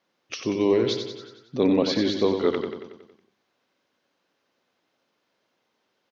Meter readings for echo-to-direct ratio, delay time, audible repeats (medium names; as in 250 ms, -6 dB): -5.5 dB, 92 ms, 6